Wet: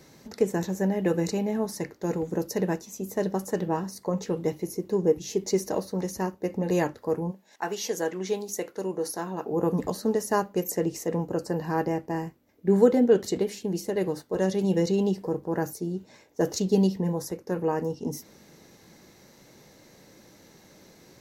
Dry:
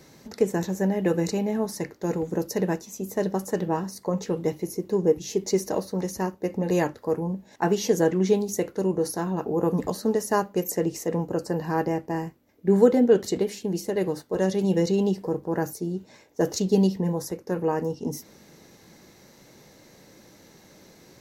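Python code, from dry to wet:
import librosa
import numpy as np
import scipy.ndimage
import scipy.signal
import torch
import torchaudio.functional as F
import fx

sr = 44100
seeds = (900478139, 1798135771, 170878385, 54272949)

y = fx.highpass(x, sr, hz=fx.line((7.3, 1200.0), (9.51, 320.0)), slope=6, at=(7.3, 9.51), fade=0.02)
y = y * librosa.db_to_amplitude(-1.5)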